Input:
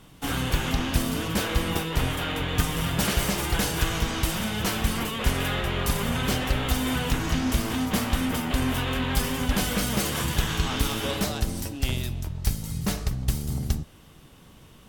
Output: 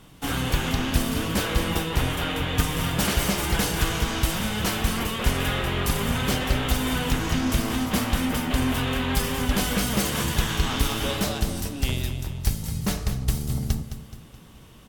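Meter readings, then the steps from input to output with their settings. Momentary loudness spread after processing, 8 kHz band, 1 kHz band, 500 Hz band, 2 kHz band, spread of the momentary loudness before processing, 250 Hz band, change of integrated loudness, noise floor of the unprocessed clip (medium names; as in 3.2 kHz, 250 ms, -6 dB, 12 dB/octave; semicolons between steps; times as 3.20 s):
4 LU, +1.5 dB, +1.5 dB, +1.5 dB, +1.5 dB, 4 LU, +1.5 dB, +1.5 dB, -51 dBFS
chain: feedback delay 213 ms, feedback 46%, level -11 dB; trim +1 dB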